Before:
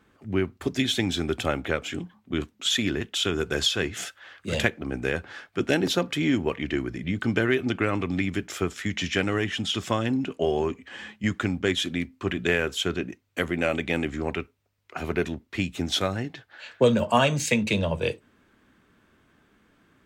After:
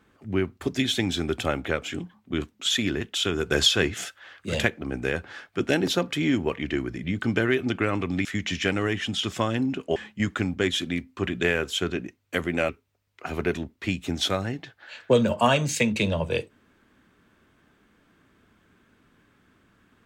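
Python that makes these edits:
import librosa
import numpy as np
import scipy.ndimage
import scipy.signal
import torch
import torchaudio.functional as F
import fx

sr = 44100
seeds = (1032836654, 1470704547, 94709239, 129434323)

y = fx.edit(x, sr, fx.clip_gain(start_s=3.51, length_s=0.43, db=4.0),
    fx.cut(start_s=8.25, length_s=0.51),
    fx.cut(start_s=10.47, length_s=0.53),
    fx.cut(start_s=13.73, length_s=0.67), tone=tone)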